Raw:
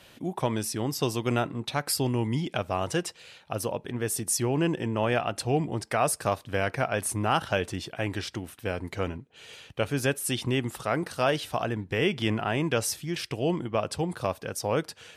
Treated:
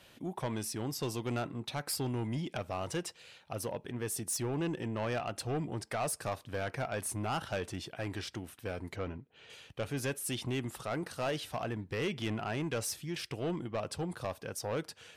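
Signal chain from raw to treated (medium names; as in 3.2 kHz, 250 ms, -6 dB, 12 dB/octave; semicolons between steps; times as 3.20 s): 8.96–9.50 s: Bessel low-pass 3.1 kHz, order 2; saturation -22.5 dBFS, distortion -12 dB; trim -5.5 dB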